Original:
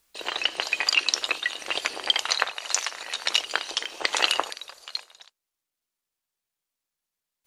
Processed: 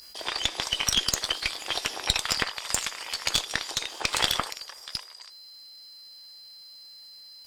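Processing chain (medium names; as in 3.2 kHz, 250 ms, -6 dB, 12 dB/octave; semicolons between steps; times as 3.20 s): single-diode clipper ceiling -16.5 dBFS; whistle 4.1 kHz -45 dBFS; formant shift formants +3 st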